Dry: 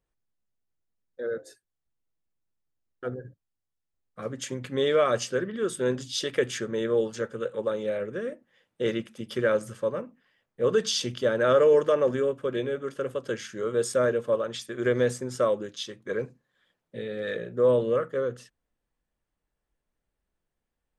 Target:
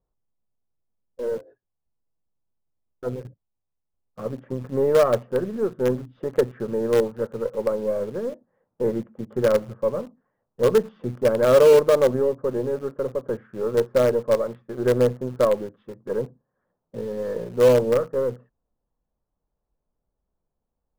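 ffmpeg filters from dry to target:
ffmpeg -i in.wav -filter_complex "[0:a]lowpass=frequency=1100:width=0.5412,lowpass=frequency=1100:width=1.3066,equalizer=frequency=320:width=4.6:gain=-4,asplit=2[link_01][link_02];[link_02]acrusher=bits=4:dc=4:mix=0:aa=0.000001,volume=-10dB[link_03];[link_01][link_03]amix=inputs=2:normalize=0,volume=3.5dB" out.wav

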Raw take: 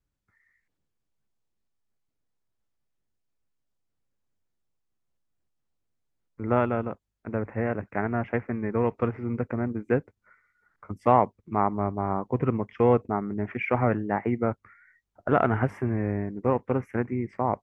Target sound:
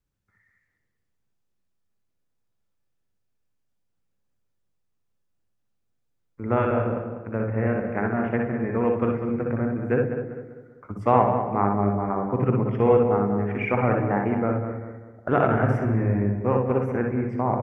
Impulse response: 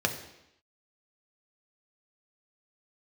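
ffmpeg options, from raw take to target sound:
-filter_complex "[0:a]asplit=2[link_01][link_02];[link_02]adelay=196,lowpass=frequency=1800:poles=1,volume=-7.5dB,asplit=2[link_03][link_04];[link_04]adelay=196,lowpass=frequency=1800:poles=1,volume=0.42,asplit=2[link_05][link_06];[link_06]adelay=196,lowpass=frequency=1800:poles=1,volume=0.42,asplit=2[link_07][link_08];[link_08]adelay=196,lowpass=frequency=1800:poles=1,volume=0.42,asplit=2[link_09][link_10];[link_10]adelay=196,lowpass=frequency=1800:poles=1,volume=0.42[link_11];[link_01][link_03][link_05][link_07][link_09][link_11]amix=inputs=6:normalize=0,asplit=2[link_12][link_13];[1:a]atrim=start_sample=2205,adelay=60[link_14];[link_13][link_14]afir=irnorm=-1:irlink=0,volume=-12dB[link_15];[link_12][link_15]amix=inputs=2:normalize=0"

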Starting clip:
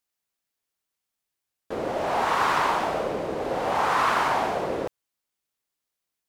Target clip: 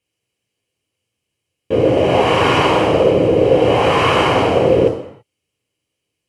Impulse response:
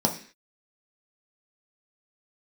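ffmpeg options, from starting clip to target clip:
-filter_complex "[1:a]atrim=start_sample=2205,afade=type=out:start_time=0.23:duration=0.01,atrim=end_sample=10584,asetrate=23373,aresample=44100[link_01];[0:a][link_01]afir=irnorm=-1:irlink=0,volume=-4.5dB"

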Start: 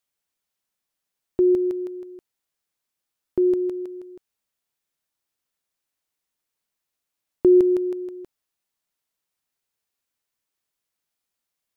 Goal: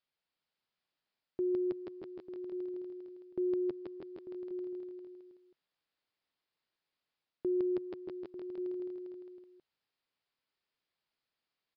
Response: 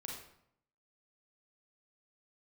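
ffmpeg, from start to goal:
-af "areverse,acompressor=threshold=-28dB:ratio=6,areverse,lowshelf=frequency=91:gain=-8,aresample=11025,aresample=44100,equalizer=frequency=150:width_type=o:width=0.26:gain=3.5,aecho=1:1:330|627|894.3|1135|1351:0.631|0.398|0.251|0.158|0.1,volume=-3dB"

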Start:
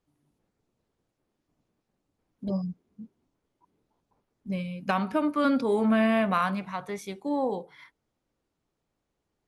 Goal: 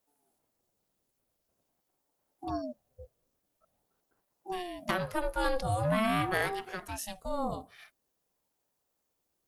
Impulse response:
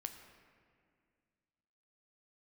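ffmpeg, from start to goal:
-af "aemphasis=mode=production:type=75fm,aeval=exprs='val(0)*sin(2*PI*420*n/s+420*0.4/0.46*sin(2*PI*0.46*n/s))':channel_layout=same,volume=-2dB"

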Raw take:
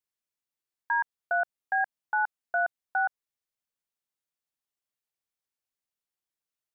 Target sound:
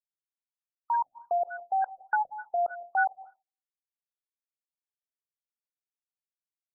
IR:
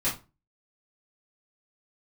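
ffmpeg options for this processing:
-filter_complex "[0:a]aeval=exprs='val(0)*gte(abs(val(0)),0.002)':channel_layout=same,asplit=2[link_01][link_02];[1:a]atrim=start_sample=2205,adelay=137[link_03];[link_02][link_03]afir=irnorm=-1:irlink=0,volume=-24.5dB[link_04];[link_01][link_04]amix=inputs=2:normalize=0,afftfilt=real='re*lt(b*sr/1024,720*pow(1600/720,0.5+0.5*sin(2*PI*3.4*pts/sr)))':imag='im*lt(b*sr/1024,720*pow(1600/720,0.5+0.5*sin(2*PI*3.4*pts/sr)))':win_size=1024:overlap=0.75,volume=3dB"

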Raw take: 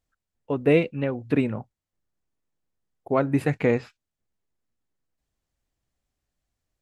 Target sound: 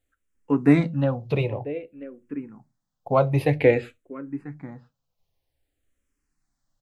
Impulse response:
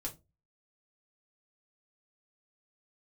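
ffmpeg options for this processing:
-filter_complex "[0:a]asplit=2[link_01][link_02];[link_02]adelay=991.3,volume=-17dB,highshelf=frequency=4000:gain=-22.3[link_03];[link_01][link_03]amix=inputs=2:normalize=0,asplit=2[link_04][link_05];[1:a]atrim=start_sample=2205,atrim=end_sample=6615[link_06];[link_05][link_06]afir=irnorm=-1:irlink=0,volume=-7.5dB[link_07];[link_04][link_07]amix=inputs=2:normalize=0,asplit=2[link_08][link_09];[link_09]afreqshift=-0.52[link_10];[link_08][link_10]amix=inputs=2:normalize=1,volume=3.5dB"

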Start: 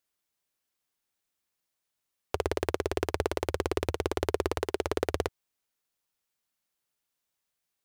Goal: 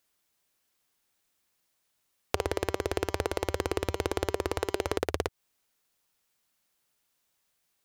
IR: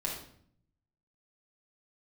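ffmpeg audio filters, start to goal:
-filter_complex "[0:a]asplit=3[link_01][link_02][link_03];[link_01]afade=type=out:start_time=2.36:duration=0.02[link_04];[link_02]bandreject=frequency=195.8:width_type=h:width=4,bandreject=frequency=391.6:width_type=h:width=4,bandreject=frequency=587.4:width_type=h:width=4,bandreject=frequency=783.2:width_type=h:width=4,bandreject=frequency=979:width_type=h:width=4,bandreject=frequency=1174.8:width_type=h:width=4,bandreject=frequency=1370.6:width_type=h:width=4,bandreject=frequency=1566.4:width_type=h:width=4,bandreject=frequency=1762.2:width_type=h:width=4,bandreject=frequency=1958:width_type=h:width=4,bandreject=frequency=2153.8:width_type=h:width=4,bandreject=frequency=2349.6:width_type=h:width=4,bandreject=frequency=2545.4:width_type=h:width=4,bandreject=frequency=2741.2:width_type=h:width=4,bandreject=frequency=2937:width_type=h:width=4,bandreject=frequency=3132.8:width_type=h:width=4,bandreject=frequency=3328.6:width_type=h:width=4,bandreject=frequency=3524.4:width_type=h:width=4,bandreject=frequency=3720.2:width_type=h:width=4,bandreject=frequency=3916:width_type=h:width=4,bandreject=frequency=4111.8:width_type=h:width=4,bandreject=frequency=4307.6:width_type=h:width=4,bandreject=frequency=4503.4:width_type=h:width=4,bandreject=frequency=4699.2:width_type=h:width=4,bandreject=frequency=4895:width_type=h:width=4,bandreject=frequency=5090.8:width_type=h:width=4,bandreject=frequency=5286.6:width_type=h:width=4,bandreject=frequency=5482.4:width_type=h:width=4,bandreject=frequency=5678.2:width_type=h:width=4,bandreject=frequency=5874:width_type=h:width=4,bandreject=frequency=6069.8:width_type=h:width=4,bandreject=frequency=6265.6:width_type=h:width=4,bandreject=frequency=6461.4:width_type=h:width=4,bandreject=frequency=6657.2:width_type=h:width=4,bandreject=frequency=6853:width_type=h:width=4,bandreject=frequency=7048.8:width_type=h:width=4,bandreject=frequency=7244.6:width_type=h:width=4,bandreject=frequency=7440.4:width_type=h:width=4,afade=type=in:start_time=2.36:duration=0.02,afade=type=out:start_time=4.96:duration=0.02[link_05];[link_03]afade=type=in:start_time=4.96:duration=0.02[link_06];[link_04][link_05][link_06]amix=inputs=3:normalize=0,acompressor=threshold=-31dB:ratio=12,volume=7.5dB"

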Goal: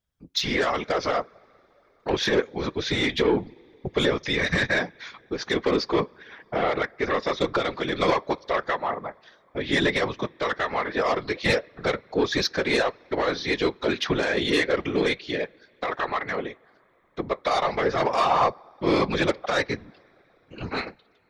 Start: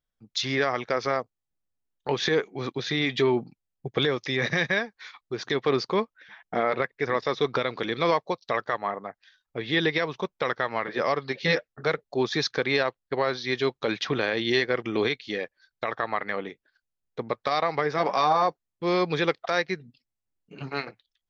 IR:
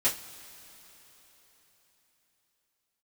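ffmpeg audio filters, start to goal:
-filter_complex "[0:a]asplit=2[link_01][link_02];[1:a]atrim=start_sample=2205,highshelf=frequency=4400:gain=-10.5[link_03];[link_02][link_03]afir=irnorm=-1:irlink=0,volume=-25.5dB[link_04];[link_01][link_04]amix=inputs=2:normalize=0,aeval=exprs='0.355*sin(PI/2*1.78*val(0)/0.355)':channel_layout=same,afftfilt=real='hypot(re,im)*cos(2*PI*random(0))':imag='hypot(re,im)*sin(2*PI*random(1))':win_size=512:overlap=0.75"

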